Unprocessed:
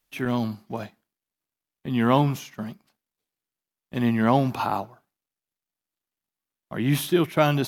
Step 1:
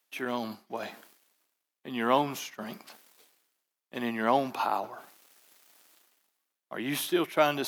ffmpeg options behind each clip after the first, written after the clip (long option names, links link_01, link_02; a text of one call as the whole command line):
ffmpeg -i in.wav -af "highpass=370,areverse,acompressor=mode=upward:threshold=-30dB:ratio=2.5,areverse,volume=-2.5dB" out.wav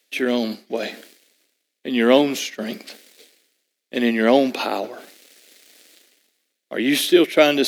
ffmpeg -i in.wav -af "equalizer=frequency=125:width_type=o:width=1:gain=-6,equalizer=frequency=250:width_type=o:width=1:gain=9,equalizer=frequency=500:width_type=o:width=1:gain=11,equalizer=frequency=1000:width_type=o:width=1:gain=-11,equalizer=frequency=2000:width_type=o:width=1:gain=8,equalizer=frequency=4000:width_type=o:width=1:gain=8,equalizer=frequency=8000:width_type=o:width=1:gain=5,volume=4.5dB" out.wav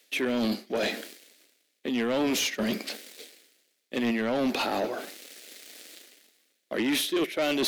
ffmpeg -i in.wav -af "areverse,acompressor=threshold=-23dB:ratio=8,areverse,asoftclip=type=tanh:threshold=-25dB,volume=3.5dB" out.wav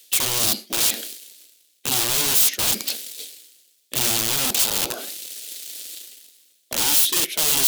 ffmpeg -i in.wav -af "aeval=exprs='(mod(17.8*val(0)+1,2)-1)/17.8':channel_layout=same,aexciter=amount=4.1:drive=3.3:freq=2800" out.wav